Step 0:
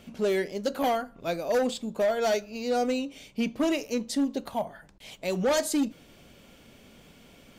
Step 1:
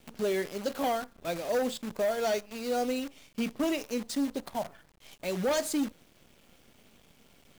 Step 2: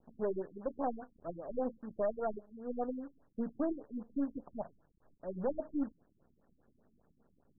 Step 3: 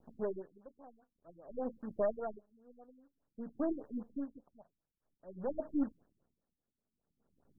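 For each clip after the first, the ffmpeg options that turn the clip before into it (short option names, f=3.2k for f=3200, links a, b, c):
-af "acrusher=bits=7:dc=4:mix=0:aa=0.000001,volume=-3.5dB"
-af "aeval=exprs='0.0708*(cos(1*acos(clip(val(0)/0.0708,-1,1)))-cos(1*PI/2))+0.0112*(cos(2*acos(clip(val(0)/0.0708,-1,1)))-cos(2*PI/2))+0.00891*(cos(3*acos(clip(val(0)/0.0708,-1,1)))-cos(3*PI/2))':c=same,afftfilt=real='re*lt(b*sr/1024,300*pow(1900/300,0.5+0.5*sin(2*PI*5*pts/sr)))':imag='im*lt(b*sr/1024,300*pow(1900/300,0.5+0.5*sin(2*PI*5*pts/sr)))':win_size=1024:overlap=0.75,volume=-4.5dB"
-af "aeval=exprs='val(0)*pow(10,-24*(0.5-0.5*cos(2*PI*0.52*n/s))/20)':c=same,volume=2dB"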